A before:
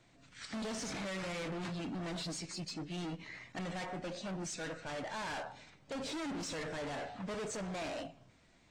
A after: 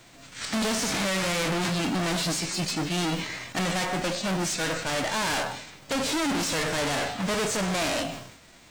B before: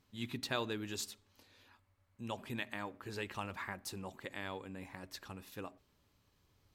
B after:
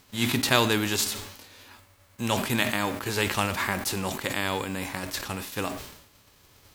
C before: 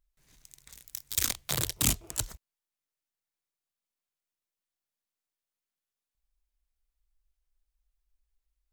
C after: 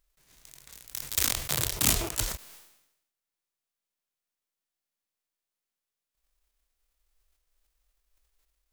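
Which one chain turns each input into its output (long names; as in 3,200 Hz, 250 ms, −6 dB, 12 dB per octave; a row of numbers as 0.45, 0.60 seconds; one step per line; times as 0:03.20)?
spectral envelope flattened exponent 0.6
level that may fall only so fast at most 68 dB per second
loudness normalisation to −27 LKFS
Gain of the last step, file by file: +13.0, +14.5, +1.0 decibels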